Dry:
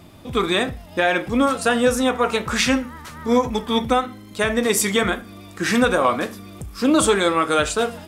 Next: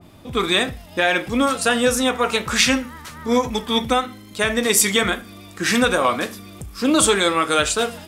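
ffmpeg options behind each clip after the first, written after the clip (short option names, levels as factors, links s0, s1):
-af "adynamicequalizer=threshold=0.0251:dfrequency=1800:dqfactor=0.7:tfrequency=1800:tqfactor=0.7:attack=5:release=100:ratio=0.375:range=3:mode=boostabove:tftype=highshelf,volume=0.891"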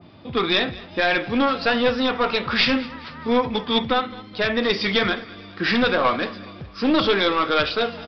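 -af "highpass=87,aresample=11025,aeval=exprs='clip(val(0),-1,0.15)':c=same,aresample=44100,aecho=1:1:211|422|633:0.1|0.046|0.0212"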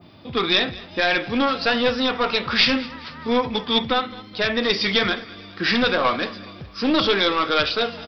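-af "aemphasis=mode=production:type=50kf,volume=0.891"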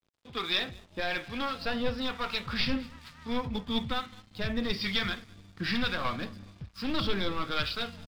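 -filter_complex "[0:a]aeval=exprs='sgn(val(0))*max(abs(val(0))-0.00841,0)':c=same,acrossover=split=860[s0][s1];[s0]aeval=exprs='val(0)*(1-0.5/2+0.5/2*cos(2*PI*1.1*n/s))':c=same[s2];[s1]aeval=exprs='val(0)*(1-0.5/2-0.5/2*cos(2*PI*1.1*n/s))':c=same[s3];[s2][s3]amix=inputs=2:normalize=0,asubboost=boost=6.5:cutoff=160,volume=0.376"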